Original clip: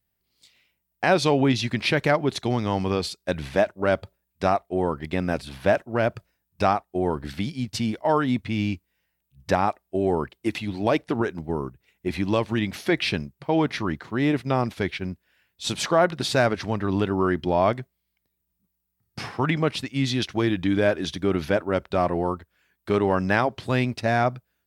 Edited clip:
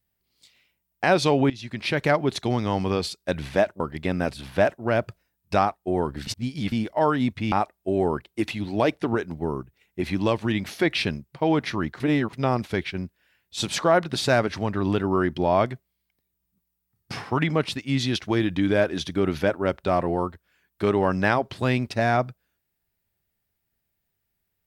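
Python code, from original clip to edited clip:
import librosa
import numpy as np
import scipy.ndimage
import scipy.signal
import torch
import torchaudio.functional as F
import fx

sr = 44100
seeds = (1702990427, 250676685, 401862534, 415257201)

y = fx.edit(x, sr, fx.fade_in_from(start_s=1.5, length_s=0.61, floor_db=-19.5),
    fx.cut(start_s=3.8, length_s=1.08),
    fx.reverse_span(start_s=7.35, length_s=0.45),
    fx.cut(start_s=8.6, length_s=0.99),
    fx.reverse_span(start_s=14.07, length_s=0.33), tone=tone)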